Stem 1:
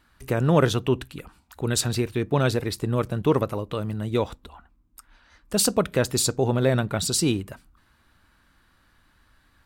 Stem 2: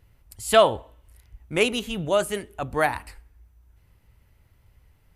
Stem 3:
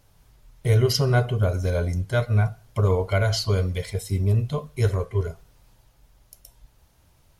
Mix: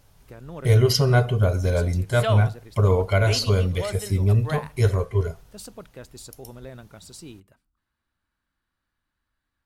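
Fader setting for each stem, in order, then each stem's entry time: -19.5 dB, -9.5 dB, +2.0 dB; 0.00 s, 1.70 s, 0.00 s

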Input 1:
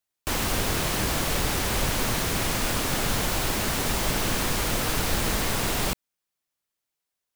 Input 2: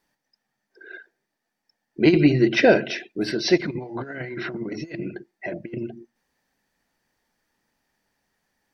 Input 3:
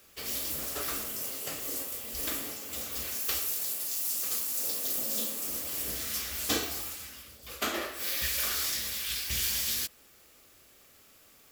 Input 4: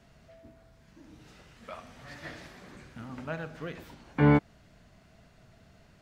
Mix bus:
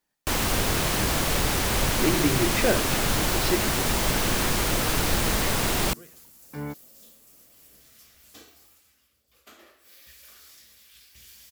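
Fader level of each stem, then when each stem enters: +1.5 dB, -8.5 dB, -20.0 dB, -13.5 dB; 0.00 s, 0.00 s, 1.85 s, 2.35 s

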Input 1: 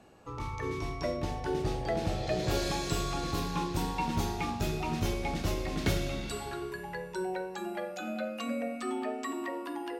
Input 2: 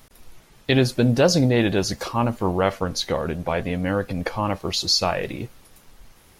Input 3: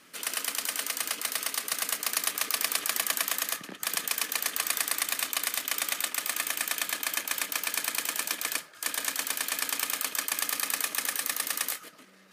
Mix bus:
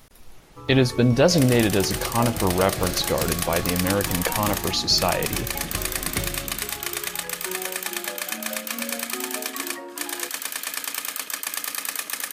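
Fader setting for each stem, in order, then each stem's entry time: -0.5 dB, 0.0 dB, +1.0 dB; 0.30 s, 0.00 s, 1.15 s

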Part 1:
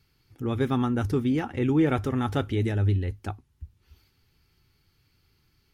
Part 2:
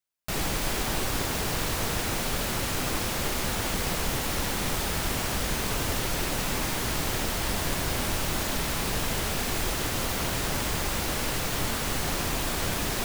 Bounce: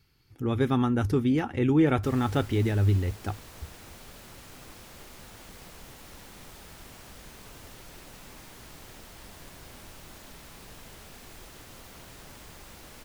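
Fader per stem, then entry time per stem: +0.5 dB, -19.0 dB; 0.00 s, 1.75 s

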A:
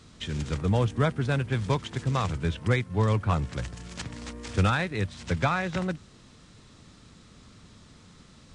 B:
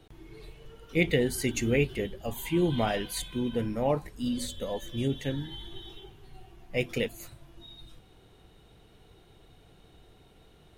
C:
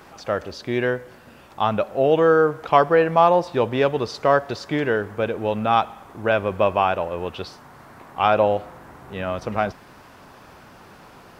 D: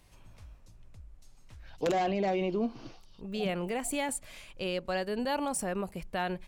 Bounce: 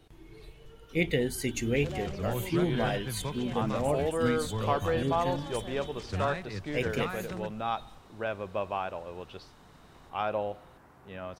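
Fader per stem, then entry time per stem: -10.0 dB, -2.5 dB, -13.5 dB, -11.5 dB; 1.55 s, 0.00 s, 1.95 s, 0.00 s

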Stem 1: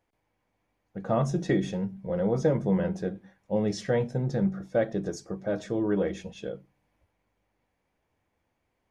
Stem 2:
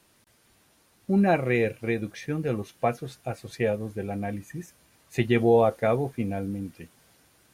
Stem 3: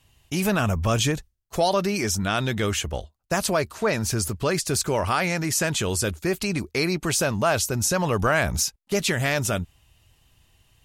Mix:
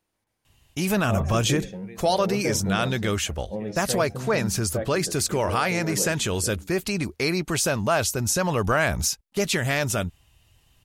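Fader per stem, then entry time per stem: -5.0 dB, -18.0 dB, -0.5 dB; 0.00 s, 0.00 s, 0.45 s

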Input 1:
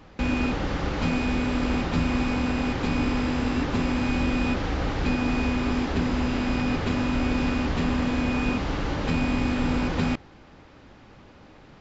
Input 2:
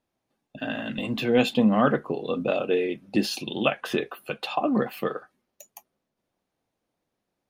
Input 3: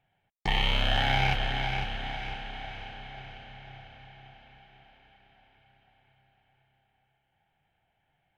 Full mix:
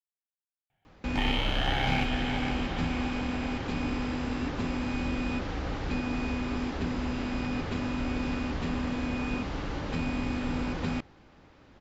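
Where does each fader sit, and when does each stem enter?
-6.5 dB, mute, -3.5 dB; 0.85 s, mute, 0.70 s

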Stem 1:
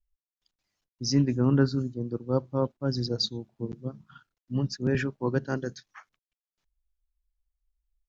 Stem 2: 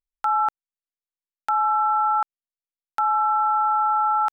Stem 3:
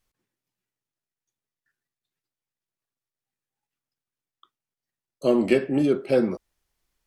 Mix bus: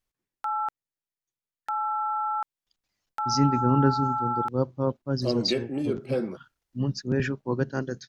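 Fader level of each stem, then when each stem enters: +0.5 dB, -7.5 dB, -7.5 dB; 2.25 s, 0.20 s, 0.00 s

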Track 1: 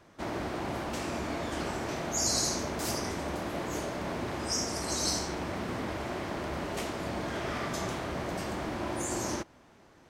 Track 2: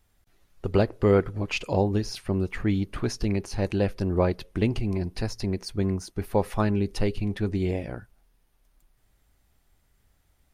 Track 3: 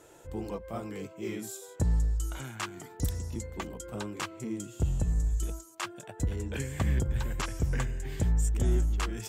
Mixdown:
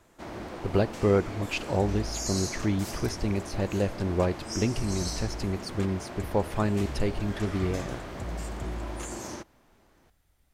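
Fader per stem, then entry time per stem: -5.0 dB, -2.5 dB, -10.0 dB; 0.00 s, 0.00 s, 0.00 s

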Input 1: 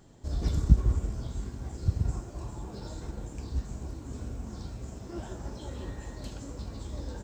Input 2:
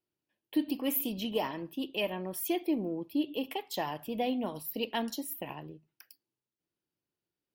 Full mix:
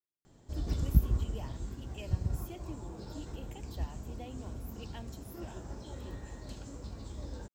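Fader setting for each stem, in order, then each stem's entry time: -4.5 dB, -16.0 dB; 0.25 s, 0.00 s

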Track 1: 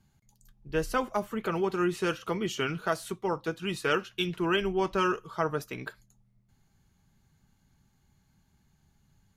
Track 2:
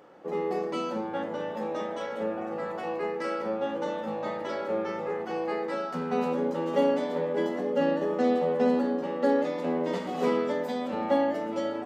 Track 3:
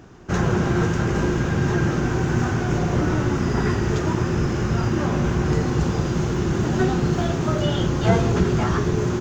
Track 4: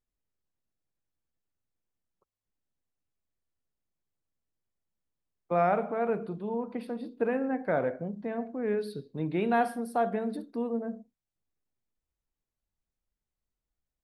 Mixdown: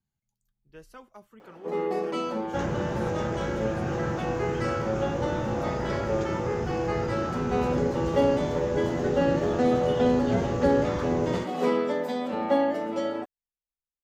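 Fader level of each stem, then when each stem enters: -19.0 dB, +1.5 dB, -11.0 dB, -16.0 dB; 0.00 s, 1.40 s, 2.25 s, 0.00 s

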